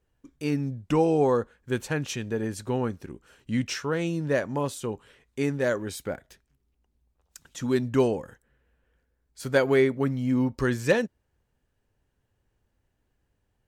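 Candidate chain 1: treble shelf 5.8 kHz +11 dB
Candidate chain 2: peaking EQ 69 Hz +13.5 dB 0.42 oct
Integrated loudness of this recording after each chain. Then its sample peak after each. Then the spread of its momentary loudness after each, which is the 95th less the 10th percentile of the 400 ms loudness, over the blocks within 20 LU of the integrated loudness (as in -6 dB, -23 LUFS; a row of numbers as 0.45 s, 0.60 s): -26.5 LUFS, -27.0 LUFS; -9.5 dBFS, -10.0 dBFS; 14 LU, 14 LU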